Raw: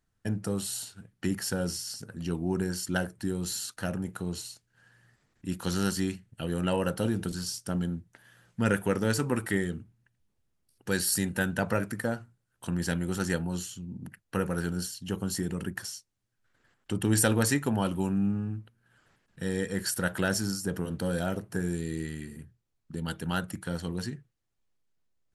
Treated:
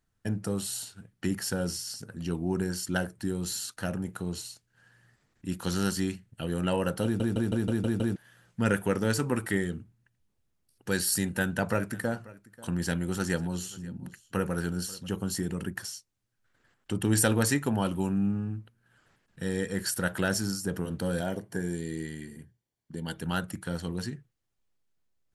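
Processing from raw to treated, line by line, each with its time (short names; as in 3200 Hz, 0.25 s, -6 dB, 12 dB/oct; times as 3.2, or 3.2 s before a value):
7.04 stutter in place 0.16 s, 7 plays
11.15–15.07 echo 0.538 s -20.5 dB
21.21–23.17 notch comb 1300 Hz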